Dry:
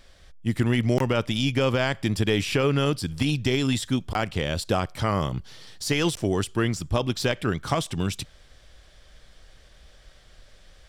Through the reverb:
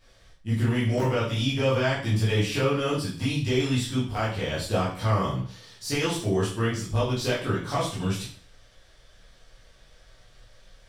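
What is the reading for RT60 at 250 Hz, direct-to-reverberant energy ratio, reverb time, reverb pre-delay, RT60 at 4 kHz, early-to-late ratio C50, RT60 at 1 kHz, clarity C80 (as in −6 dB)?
0.45 s, −10.0 dB, 0.45 s, 6 ms, 0.45 s, 4.5 dB, 0.45 s, 9.5 dB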